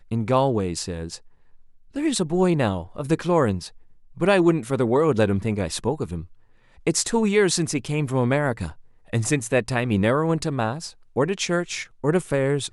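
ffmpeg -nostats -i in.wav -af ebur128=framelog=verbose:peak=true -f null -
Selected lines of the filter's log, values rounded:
Integrated loudness:
  I:         -22.9 LUFS
  Threshold: -33.6 LUFS
Loudness range:
  LRA:         2.4 LU
  Threshold: -43.4 LUFS
  LRA low:   -24.6 LUFS
  LRA high:  -22.2 LUFS
True peak:
  Peak:       -4.4 dBFS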